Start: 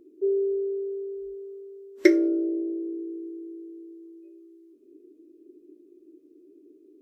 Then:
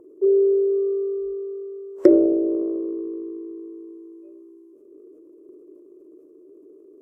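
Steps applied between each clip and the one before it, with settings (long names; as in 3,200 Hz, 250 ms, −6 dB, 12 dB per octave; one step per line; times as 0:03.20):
graphic EQ with 10 bands 125 Hz +5 dB, 250 Hz −10 dB, 500 Hz +12 dB, 1,000 Hz +9 dB, 2,000 Hz −7 dB, 4,000 Hz −12 dB
transient designer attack −2 dB, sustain +6 dB
treble cut that deepens with the level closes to 610 Hz, closed at −19.5 dBFS
level +3 dB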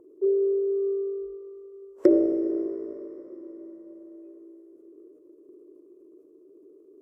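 convolution reverb RT60 5.0 s, pre-delay 48 ms, DRR 10.5 dB
level −5 dB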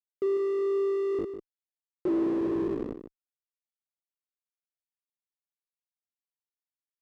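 comparator with hysteresis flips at −30.5 dBFS
resonant band-pass 340 Hz, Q 1.6
single-tap delay 149 ms −11 dB
level +5.5 dB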